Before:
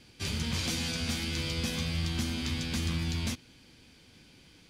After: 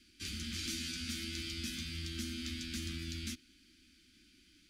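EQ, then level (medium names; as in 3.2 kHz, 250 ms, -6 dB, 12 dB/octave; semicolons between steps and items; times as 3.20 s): elliptic band-stop 340–1300 Hz, stop band 40 dB; static phaser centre 320 Hz, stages 4; -5.0 dB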